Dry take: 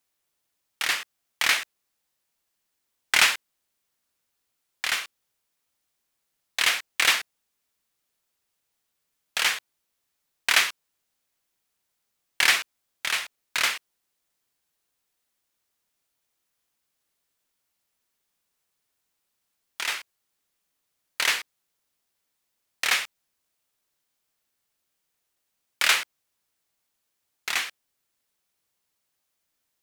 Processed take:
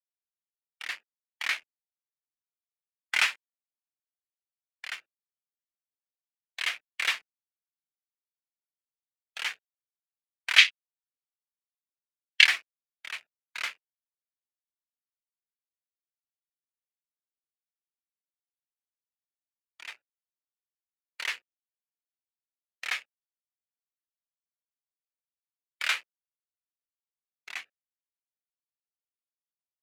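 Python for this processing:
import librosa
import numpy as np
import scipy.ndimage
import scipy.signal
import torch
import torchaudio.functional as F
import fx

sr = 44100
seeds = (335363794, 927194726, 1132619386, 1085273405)

y = fx.wiener(x, sr, points=41)
y = fx.weighting(y, sr, curve='D', at=(10.58, 12.45))
y = fx.spectral_expand(y, sr, expansion=1.5)
y = F.gain(torch.from_numpy(y), -3.0).numpy()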